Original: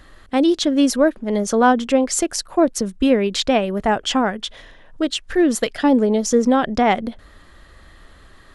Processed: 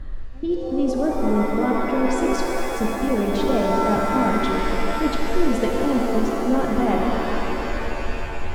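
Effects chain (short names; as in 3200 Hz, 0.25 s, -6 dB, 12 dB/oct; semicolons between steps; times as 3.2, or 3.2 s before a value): tilt -3.5 dB/oct; reverse; compressor, threshold -19 dBFS, peak gain reduction 13.5 dB; reverse; step gate "xx.x.xxx" 105 bpm -24 dB; shimmer reverb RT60 3.7 s, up +7 st, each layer -2 dB, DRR 0 dB; gain -2 dB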